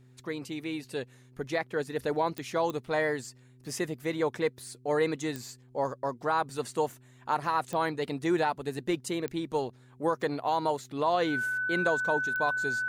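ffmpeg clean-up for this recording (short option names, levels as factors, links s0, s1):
-af "adeclick=t=4,bandreject=f=126.5:t=h:w=4,bandreject=f=253:t=h:w=4,bandreject=f=379.5:t=h:w=4,bandreject=f=1500:w=30"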